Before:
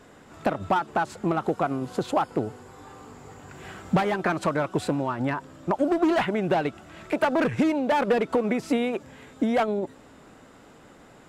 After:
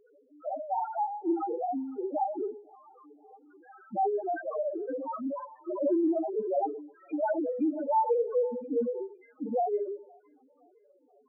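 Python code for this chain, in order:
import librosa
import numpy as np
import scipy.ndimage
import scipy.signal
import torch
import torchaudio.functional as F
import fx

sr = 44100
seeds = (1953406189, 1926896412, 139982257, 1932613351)

p1 = scipy.signal.sosfilt(scipy.signal.butter(4, 270.0, 'highpass', fs=sr, output='sos'), x)
p2 = fx.dereverb_blind(p1, sr, rt60_s=1.1)
p3 = fx.rev_schroeder(p2, sr, rt60_s=0.54, comb_ms=30, drr_db=-1.5)
p4 = fx.quant_float(p3, sr, bits=2)
p5 = p3 + F.gain(torch.from_numpy(p4), -9.0).numpy()
p6 = fx.spec_topn(p5, sr, count=1)
y = p6 + fx.echo_wet_highpass(p6, sr, ms=514, feedback_pct=42, hz=2300.0, wet_db=-8.0, dry=0)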